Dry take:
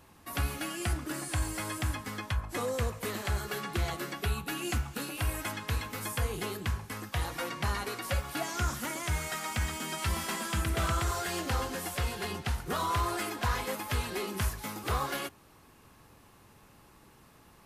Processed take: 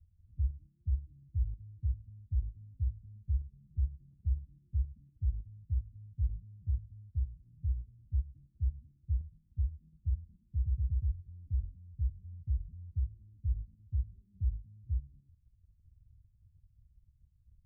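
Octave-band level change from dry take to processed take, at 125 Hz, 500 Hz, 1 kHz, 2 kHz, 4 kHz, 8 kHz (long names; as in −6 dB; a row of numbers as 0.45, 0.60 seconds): −0.5 dB, below −40 dB, below −40 dB, below −40 dB, below −40 dB, below −40 dB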